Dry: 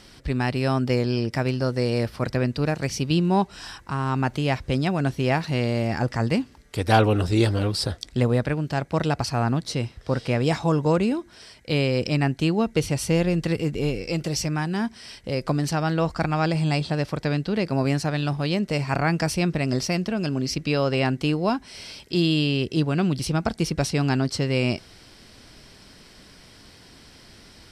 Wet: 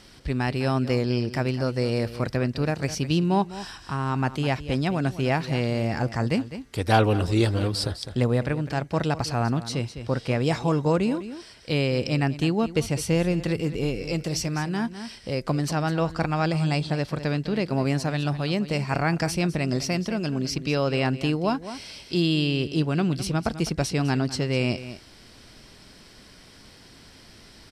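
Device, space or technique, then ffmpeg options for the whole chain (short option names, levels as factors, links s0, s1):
ducked delay: -filter_complex "[0:a]asplit=3[s0][s1][s2];[s1]adelay=205,volume=0.447[s3];[s2]apad=whole_len=1231230[s4];[s3][s4]sidechaincompress=threshold=0.0398:ratio=5:attack=48:release=588[s5];[s0][s5]amix=inputs=2:normalize=0,volume=0.841"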